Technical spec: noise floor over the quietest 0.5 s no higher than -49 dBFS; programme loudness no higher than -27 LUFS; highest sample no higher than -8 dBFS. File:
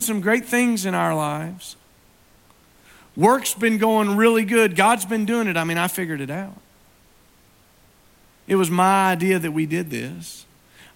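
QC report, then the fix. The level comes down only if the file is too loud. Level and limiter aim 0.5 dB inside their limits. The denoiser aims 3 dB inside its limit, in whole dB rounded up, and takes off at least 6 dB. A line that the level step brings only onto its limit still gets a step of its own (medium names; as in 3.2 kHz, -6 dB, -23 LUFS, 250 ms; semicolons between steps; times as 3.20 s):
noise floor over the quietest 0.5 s -55 dBFS: pass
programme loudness -20.0 LUFS: fail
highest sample -3.5 dBFS: fail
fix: trim -7.5 dB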